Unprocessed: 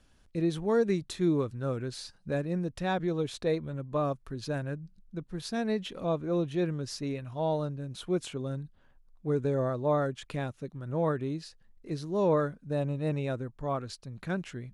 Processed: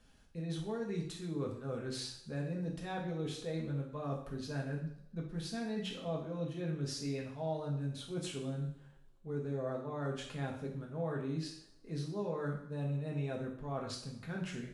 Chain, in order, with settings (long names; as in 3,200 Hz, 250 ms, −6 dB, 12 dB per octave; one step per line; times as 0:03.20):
reversed playback
downward compressor, threshold −36 dBFS, peak gain reduction 14 dB
reversed playback
coupled-rooms reverb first 0.6 s, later 2.4 s, from −28 dB, DRR −2 dB
level −3.5 dB